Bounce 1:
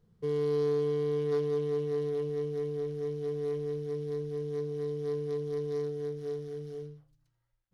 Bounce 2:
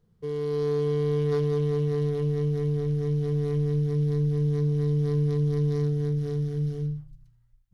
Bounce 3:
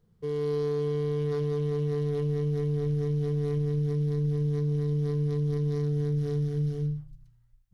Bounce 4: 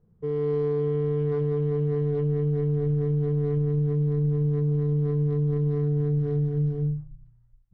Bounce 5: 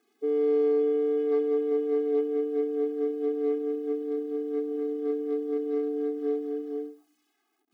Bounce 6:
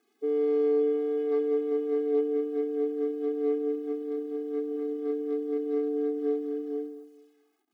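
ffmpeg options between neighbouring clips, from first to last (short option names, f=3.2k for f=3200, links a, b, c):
-af "asubboost=boost=10:cutoff=140,dynaudnorm=f=100:g=13:m=5.5dB"
-af "alimiter=limit=-21dB:level=0:latency=1"
-af "adynamicsmooth=sensitivity=1:basefreq=1.3k,volume=3.5dB"
-af "acrusher=bits=11:mix=0:aa=0.000001,afftfilt=real='re*eq(mod(floor(b*sr/1024/220),2),1)':imag='im*eq(mod(floor(b*sr/1024/220),2),1)':win_size=1024:overlap=0.75,volume=5dB"
-filter_complex "[0:a]asplit=2[a][b];[b]adelay=218,lowpass=f=2k:p=1,volume=-15dB,asplit=2[c][d];[d]adelay=218,lowpass=f=2k:p=1,volume=0.33,asplit=2[e][f];[f]adelay=218,lowpass=f=2k:p=1,volume=0.33[g];[a][c][e][g]amix=inputs=4:normalize=0,volume=-1dB"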